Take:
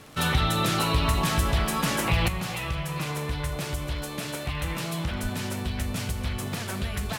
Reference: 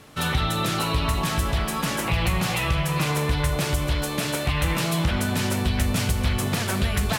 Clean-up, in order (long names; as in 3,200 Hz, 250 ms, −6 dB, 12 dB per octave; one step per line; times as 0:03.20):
click removal
0:02.28: level correction +7 dB
0:05.22–0:05.34: high-pass filter 140 Hz 24 dB per octave